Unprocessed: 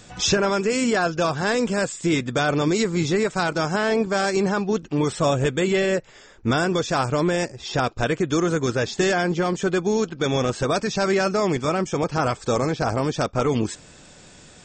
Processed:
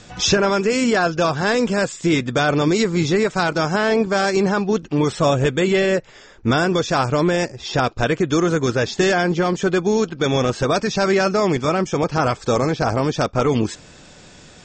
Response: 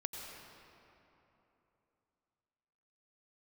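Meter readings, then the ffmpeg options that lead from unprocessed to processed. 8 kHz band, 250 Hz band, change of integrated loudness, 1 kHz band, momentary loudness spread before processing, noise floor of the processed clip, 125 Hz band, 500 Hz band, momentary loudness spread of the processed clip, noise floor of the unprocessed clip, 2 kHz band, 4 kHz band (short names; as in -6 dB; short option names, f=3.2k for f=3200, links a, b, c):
+1.5 dB, +3.5 dB, +3.5 dB, +3.5 dB, 3 LU, -45 dBFS, +3.5 dB, +3.5 dB, 3 LU, -48 dBFS, +3.5 dB, +3.5 dB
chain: -af "lowpass=f=7.1k:w=0.5412,lowpass=f=7.1k:w=1.3066,volume=3.5dB"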